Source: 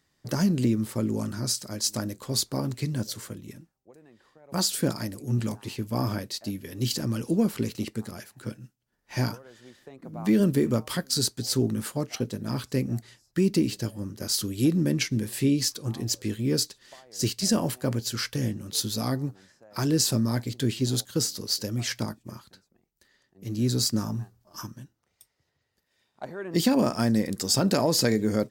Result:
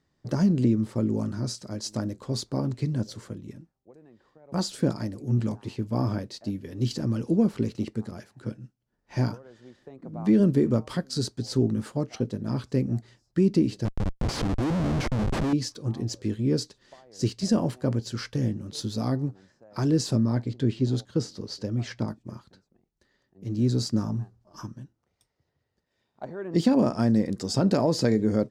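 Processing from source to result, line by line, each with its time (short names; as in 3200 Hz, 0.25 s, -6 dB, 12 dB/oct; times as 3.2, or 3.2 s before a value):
13.85–15.53 Schmitt trigger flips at -30.5 dBFS
20.17–22.08 high shelf 6800 Hz -11.5 dB
whole clip: LPF 4800 Hz 12 dB/oct; bell 2700 Hz -8.5 dB 2.6 oct; gain +2 dB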